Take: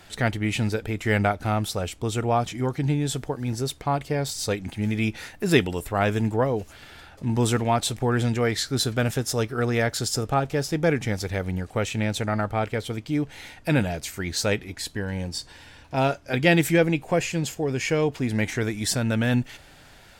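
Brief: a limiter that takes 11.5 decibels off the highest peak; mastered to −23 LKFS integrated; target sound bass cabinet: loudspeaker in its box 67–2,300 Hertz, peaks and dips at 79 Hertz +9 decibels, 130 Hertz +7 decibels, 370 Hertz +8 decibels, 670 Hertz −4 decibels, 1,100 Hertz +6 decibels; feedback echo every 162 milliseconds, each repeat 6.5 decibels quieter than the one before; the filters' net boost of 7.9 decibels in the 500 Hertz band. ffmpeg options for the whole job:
ffmpeg -i in.wav -af "equalizer=frequency=500:width_type=o:gain=7,alimiter=limit=-14dB:level=0:latency=1,highpass=frequency=67:width=0.5412,highpass=frequency=67:width=1.3066,equalizer=frequency=79:width_type=q:width=4:gain=9,equalizer=frequency=130:width_type=q:width=4:gain=7,equalizer=frequency=370:width_type=q:width=4:gain=8,equalizer=frequency=670:width_type=q:width=4:gain=-4,equalizer=frequency=1100:width_type=q:width=4:gain=6,lowpass=frequency=2300:width=0.5412,lowpass=frequency=2300:width=1.3066,aecho=1:1:162|324|486|648|810|972:0.473|0.222|0.105|0.0491|0.0231|0.0109,volume=-1.5dB" out.wav

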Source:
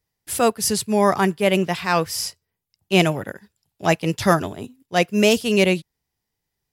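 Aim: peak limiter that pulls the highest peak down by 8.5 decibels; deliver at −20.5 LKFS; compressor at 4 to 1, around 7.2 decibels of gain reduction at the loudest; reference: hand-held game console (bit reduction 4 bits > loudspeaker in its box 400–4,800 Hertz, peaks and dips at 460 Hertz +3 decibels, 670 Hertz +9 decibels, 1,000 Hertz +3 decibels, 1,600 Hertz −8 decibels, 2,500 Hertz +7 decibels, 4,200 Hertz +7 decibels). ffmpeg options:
ffmpeg -i in.wav -af "acompressor=threshold=-20dB:ratio=4,alimiter=limit=-17dB:level=0:latency=1,acrusher=bits=3:mix=0:aa=0.000001,highpass=400,equalizer=frequency=460:width_type=q:width=4:gain=3,equalizer=frequency=670:width_type=q:width=4:gain=9,equalizer=frequency=1000:width_type=q:width=4:gain=3,equalizer=frequency=1600:width_type=q:width=4:gain=-8,equalizer=frequency=2500:width_type=q:width=4:gain=7,equalizer=frequency=4200:width_type=q:width=4:gain=7,lowpass=frequency=4800:width=0.5412,lowpass=frequency=4800:width=1.3066,volume=5.5dB" out.wav

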